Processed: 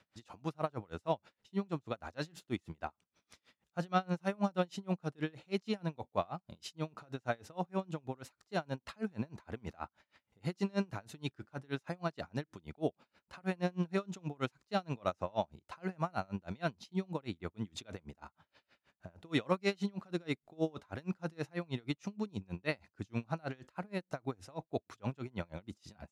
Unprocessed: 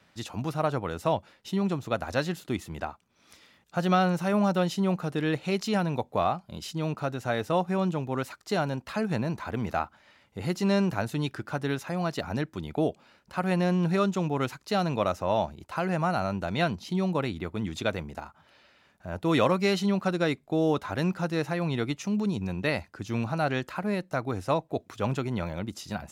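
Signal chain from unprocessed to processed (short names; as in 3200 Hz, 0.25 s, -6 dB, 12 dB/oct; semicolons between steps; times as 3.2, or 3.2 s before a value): LPF 9800 Hz 12 dB/oct; dB-linear tremolo 6.3 Hz, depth 32 dB; gain -4 dB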